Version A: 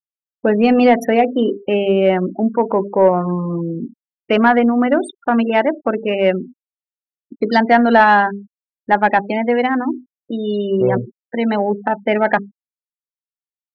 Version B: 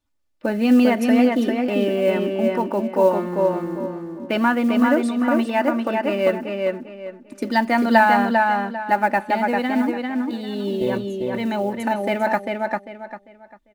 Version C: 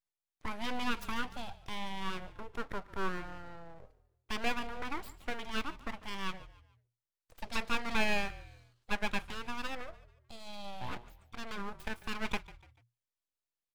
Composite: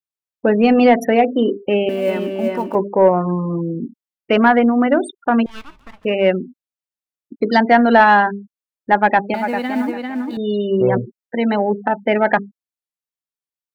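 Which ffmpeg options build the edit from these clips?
-filter_complex "[1:a]asplit=2[s0][s1];[0:a]asplit=4[s2][s3][s4][s5];[s2]atrim=end=1.892[s6];[s0]atrim=start=1.888:end=2.752[s7];[s3]atrim=start=2.748:end=5.462[s8];[2:a]atrim=start=5.458:end=6.052[s9];[s4]atrim=start=6.048:end=9.342[s10];[s1]atrim=start=9.338:end=10.372[s11];[s5]atrim=start=10.368[s12];[s6][s7]acrossfade=d=0.004:c1=hsin:c2=hsin[s13];[s13][s8]acrossfade=d=0.004:c1=hsin:c2=hsin[s14];[s14][s9]acrossfade=d=0.004:c1=hsin:c2=hsin[s15];[s15][s10]acrossfade=d=0.004:c1=hsin:c2=hsin[s16];[s16][s11]acrossfade=d=0.004:c1=hsin:c2=hsin[s17];[s17][s12]acrossfade=d=0.004:c1=hsin:c2=hsin"

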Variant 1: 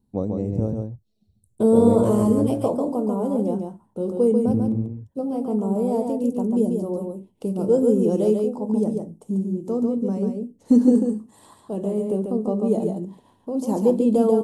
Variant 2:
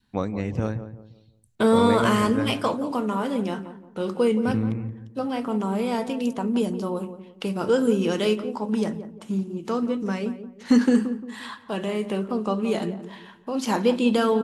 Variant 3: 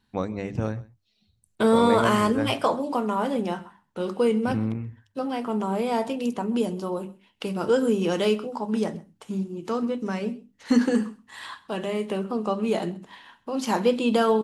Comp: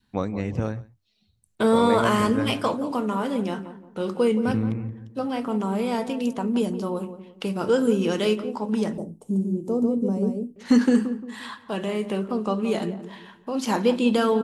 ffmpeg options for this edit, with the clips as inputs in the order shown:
-filter_complex "[1:a]asplit=3[s0][s1][s2];[s0]atrim=end=0.632[s3];[2:a]atrim=start=0.628:end=2.202[s4];[s1]atrim=start=2.198:end=8.982[s5];[0:a]atrim=start=8.978:end=10.562[s6];[s2]atrim=start=10.558[s7];[s3][s4]acrossfade=d=0.004:c1=hsin:c2=hsin[s8];[s8][s5]acrossfade=d=0.004:c1=hsin:c2=hsin[s9];[s9][s6]acrossfade=d=0.004:c1=hsin:c2=hsin[s10];[s10][s7]acrossfade=d=0.004:c1=hsin:c2=hsin"

